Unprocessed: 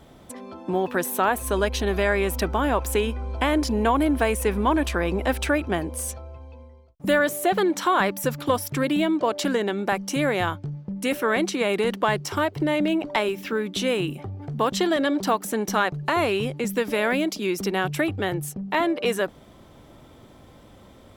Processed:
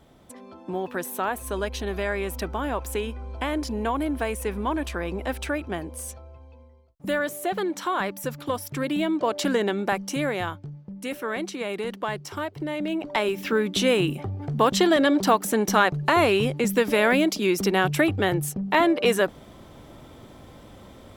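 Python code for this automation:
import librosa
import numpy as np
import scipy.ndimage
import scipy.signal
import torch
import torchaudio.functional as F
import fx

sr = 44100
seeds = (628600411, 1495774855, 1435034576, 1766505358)

y = fx.gain(x, sr, db=fx.line((8.55, -5.5), (9.65, 1.0), (10.79, -7.0), (12.75, -7.0), (13.49, 3.0)))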